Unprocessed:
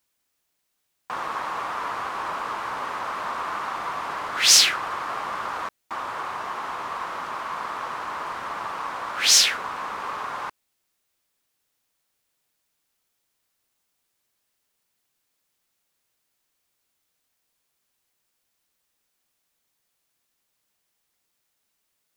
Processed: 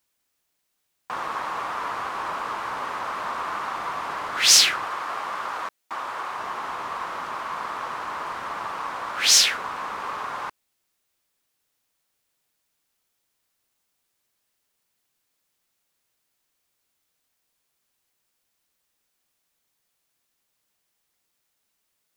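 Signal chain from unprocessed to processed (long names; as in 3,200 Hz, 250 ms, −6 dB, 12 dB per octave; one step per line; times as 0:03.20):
0:04.86–0:06.39: low-shelf EQ 200 Hz −10 dB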